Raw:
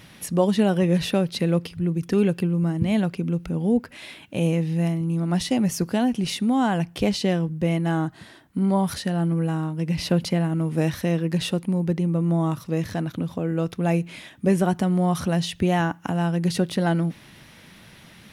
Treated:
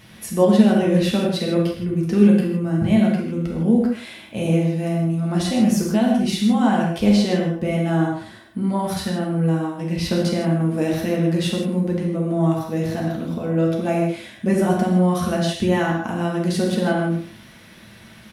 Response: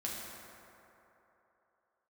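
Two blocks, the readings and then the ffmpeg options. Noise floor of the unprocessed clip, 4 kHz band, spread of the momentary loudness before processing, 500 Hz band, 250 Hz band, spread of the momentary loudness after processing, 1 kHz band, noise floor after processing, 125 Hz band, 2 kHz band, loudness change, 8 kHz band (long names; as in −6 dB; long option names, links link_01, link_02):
−49 dBFS, +2.0 dB, 5 LU, +4.0 dB, +4.5 dB, 8 LU, +2.5 dB, −45 dBFS, +1.5 dB, +3.0 dB, +3.5 dB, +2.0 dB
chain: -filter_complex "[0:a]asplit=2[link_01][link_02];[link_02]adelay=110,highpass=300,lowpass=3400,asoftclip=type=hard:threshold=-17.5dB,volume=-13dB[link_03];[link_01][link_03]amix=inputs=2:normalize=0[link_04];[1:a]atrim=start_sample=2205,afade=type=out:start_time=0.22:duration=0.01,atrim=end_sample=10143[link_05];[link_04][link_05]afir=irnorm=-1:irlink=0,volume=2dB"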